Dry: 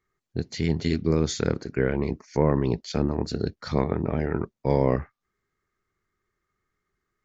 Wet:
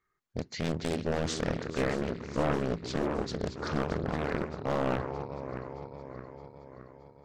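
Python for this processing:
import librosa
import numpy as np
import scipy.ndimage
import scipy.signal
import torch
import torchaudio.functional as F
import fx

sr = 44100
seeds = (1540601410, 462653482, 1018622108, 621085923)

y = fx.reverse_delay_fb(x, sr, ms=310, feedback_pct=73, wet_db=-11.5)
y = fx.peak_eq(y, sr, hz=1300.0, db=7.0, octaves=1.7)
y = np.clip(y, -10.0 ** (-16.0 / 20.0), 10.0 ** (-16.0 / 20.0))
y = fx.doppler_dist(y, sr, depth_ms=0.97)
y = y * 10.0 ** (-5.5 / 20.0)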